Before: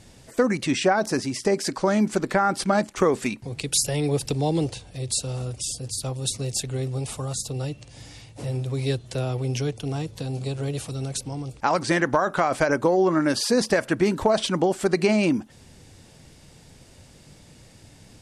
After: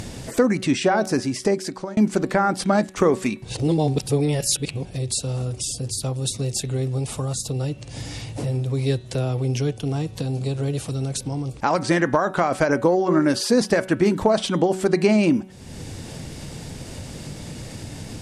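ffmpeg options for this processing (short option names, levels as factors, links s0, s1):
-filter_complex "[0:a]asplit=4[s0][s1][s2][s3];[s0]atrim=end=1.97,asetpts=PTS-STARTPTS,afade=t=out:st=1.43:d=0.54[s4];[s1]atrim=start=1.97:end=3.442,asetpts=PTS-STARTPTS,afade=t=in:d=0.004:c=hsin[s5];[s2]atrim=start=3.438:end=4.852,asetpts=PTS-STARTPTS,areverse[s6];[s3]atrim=start=4.848[s7];[s4][s5]concat=n=2:v=0:a=1[s8];[s8][s6]acrossfade=d=0.004:c1=hsin:c2=hsin[s9];[s9][s7]acrossfade=d=0.004:c1=hsin:c2=hsin,equalizer=f=200:w=0.41:g=4,bandreject=f=187.7:t=h:w=4,bandreject=f=375.4:t=h:w=4,bandreject=f=563.1:t=h:w=4,bandreject=f=750.8:t=h:w=4,bandreject=f=938.5:t=h:w=4,bandreject=f=1126.2:t=h:w=4,bandreject=f=1313.9:t=h:w=4,bandreject=f=1501.6:t=h:w=4,bandreject=f=1689.3:t=h:w=4,bandreject=f=1877:t=h:w=4,bandreject=f=2064.7:t=h:w=4,bandreject=f=2252.4:t=h:w=4,bandreject=f=2440.1:t=h:w=4,bandreject=f=2627.8:t=h:w=4,bandreject=f=2815.5:t=h:w=4,bandreject=f=3003.2:t=h:w=4,bandreject=f=3190.9:t=h:w=4,bandreject=f=3378.6:t=h:w=4,bandreject=f=3566.3:t=h:w=4,bandreject=f=3754:t=h:w=4,bandreject=f=3941.7:t=h:w=4,acompressor=mode=upward:threshold=0.0794:ratio=2.5"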